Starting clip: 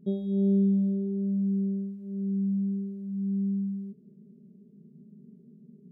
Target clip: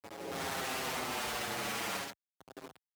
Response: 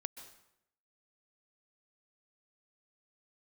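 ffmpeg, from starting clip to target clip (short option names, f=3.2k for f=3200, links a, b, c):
-filter_complex "[0:a]areverse,acompressor=threshold=-42dB:ratio=4,areverse,agate=range=-14dB:threshold=-49dB:ratio=16:detection=peak,afftfilt=real='hypot(re,im)*cos(2*PI*random(0))':imag='hypot(re,im)*sin(2*PI*random(1))':win_size=512:overlap=0.75,dynaudnorm=f=240:g=7:m=16dB,aeval=exprs='(mod(42.2*val(0)+1,2)-1)/42.2':c=same,aecho=1:1:139.9|268.2:0.891|0.501,acrusher=bits=6:mix=0:aa=0.000001,highpass=48,equalizer=f=390:w=4.7:g=3.5,asetrate=88200,aresample=44100,asplit=2[a][b];[b]adelay=6.7,afreqshift=-0.54[c];[a][c]amix=inputs=2:normalize=1"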